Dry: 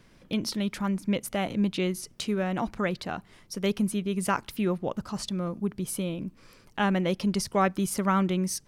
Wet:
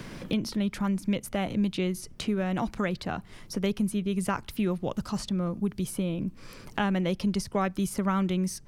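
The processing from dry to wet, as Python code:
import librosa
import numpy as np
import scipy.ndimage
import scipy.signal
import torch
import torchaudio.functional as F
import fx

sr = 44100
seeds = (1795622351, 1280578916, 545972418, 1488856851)

y = fx.low_shelf(x, sr, hz=120.0, db=10.5)
y = fx.band_squash(y, sr, depth_pct=70)
y = y * 10.0 ** (-3.0 / 20.0)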